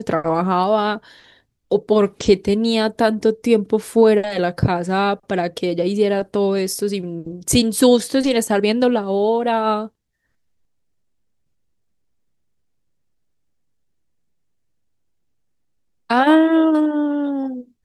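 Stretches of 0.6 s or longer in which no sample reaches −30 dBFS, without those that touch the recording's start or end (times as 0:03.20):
0:00.98–0:01.71
0:09.87–0:16.10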